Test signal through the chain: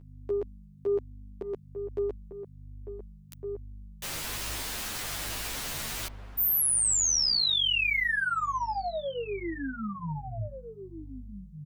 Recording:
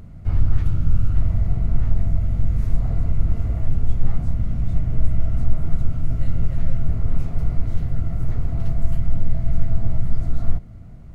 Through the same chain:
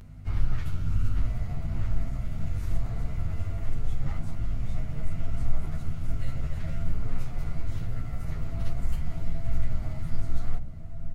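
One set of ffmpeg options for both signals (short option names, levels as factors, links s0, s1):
-filter_complex "[0:a]aeval=exprs='val(0)+0.0158*(sin(2*PI*50*n/s)+sin(2*PI*2*50*n/s)/2+sin(2*PI*3*50*n/s)/3+sin(2*PI*4*50*n/s)/4+sin(2*PI*5*50*n/s)/5)':c=same,aeval=exprs='0.708*(cos(1*acos(clip(val(0)/0.708,-1,1)))-cos(1*PI/2))+0.0178*(cos(7*acos(clip(val(0)/0.708,-1,1)))-cos(7*PI/2))':c=same,tiltshelf=f=970:g=-5.5,bandreject=f=60:t=h:w=6,bandreject=f=120:t=h:w=6,bandreject=f=180:t=h:w=6,bandreject=f=240:t=h:w=6,asplit=2[s0][s1];[s1]adelay=1458,volume=0.355,highshelf=f=4000:g=-32.8[s2];[s0][s2]amix=inputs=2:normalize=0,asplit=2[s3][s4];[s4]adelay=10.4,afreqshift=1.2[s5];[s3][s5]amix=inputs=2:normalize=1"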